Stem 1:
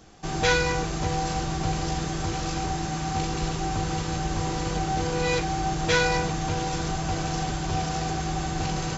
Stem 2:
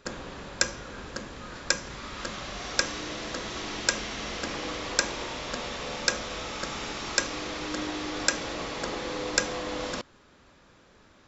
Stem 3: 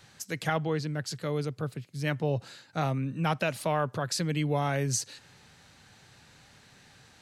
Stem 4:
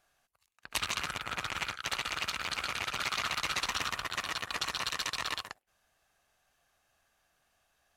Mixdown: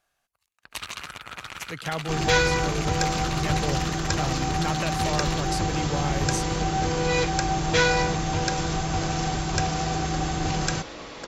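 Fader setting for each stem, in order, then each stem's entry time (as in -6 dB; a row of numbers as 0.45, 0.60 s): +1.5, -5.0, -2.0, -2.0 dB; 1.85, 2.40, 1.40, 0.00 s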